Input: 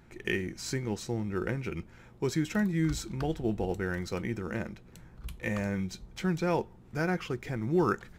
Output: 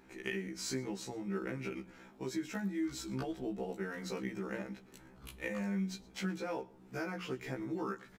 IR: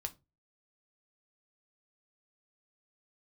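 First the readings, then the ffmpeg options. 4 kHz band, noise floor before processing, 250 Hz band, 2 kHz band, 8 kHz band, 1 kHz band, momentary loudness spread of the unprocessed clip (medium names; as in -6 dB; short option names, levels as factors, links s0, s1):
-4.0 dB, -54 dBFS, -6.5 dB, -6.5 dB, -3.5 dB, -8.5 dB, 10 LU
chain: -filter_complex "[0:a]lowshelf=f=150:t=q:w=1.5:g=-9,bandreject=f=60:t=h:w=6,bandreject=f=120:t=h:w=6,bandreject=f=180:t=h:w=6,bandreject=f=240:t=h:w=6,bandreject=f=300:t=h:w=6,bandreject=f=360:t=h:w=6,acompressor=threshold=0.0178:ratio=4,asplit=2[s0][s1];[s1]aecho=0:1:116:0.075[s2];[s0][s2]amix=inputs=2:normalize=0,afftfilt=real='re*1.73*eq(mod(b,3),0)':imag='im*1.73*eq(mod(b,3),0)':win_size=2048:overlap=0.75,volume=1.19"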